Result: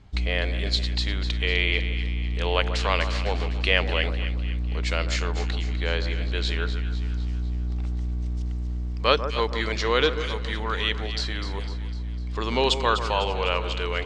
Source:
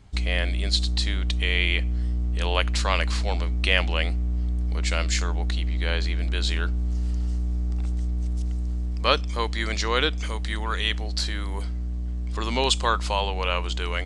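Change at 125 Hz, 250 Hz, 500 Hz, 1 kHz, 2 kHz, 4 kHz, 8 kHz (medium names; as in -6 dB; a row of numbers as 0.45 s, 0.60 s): -1.5 dB, 0.0 dB, +3.5 dB, +0.5 dB, +0.5 dB, -0.5 dB, -6.5 dB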